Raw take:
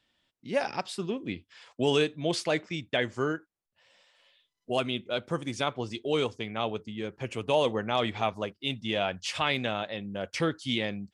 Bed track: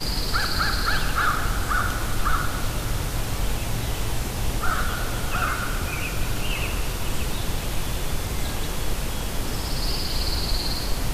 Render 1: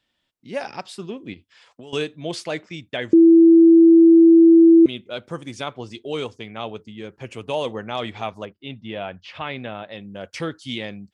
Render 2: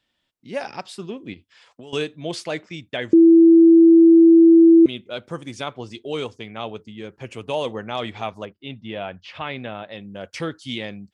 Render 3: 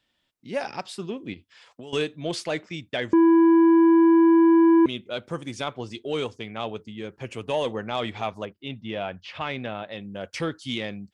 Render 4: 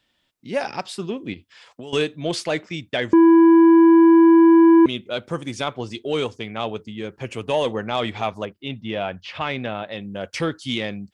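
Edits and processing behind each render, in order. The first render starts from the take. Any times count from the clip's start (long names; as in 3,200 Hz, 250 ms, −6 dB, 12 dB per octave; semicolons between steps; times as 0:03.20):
0:01.33–0:01.93: downward compressor 5 to 1, threshold −38 dBFS; 0:03.13–0:04.86: beep over 331 Hz −7 dBFS; 0:08.45–0:09.91: high-frequency loss of the air 300 metres
no processing that can be heard
soft clipping −14 dBFS, distortion −12 dB
level +4.5 dB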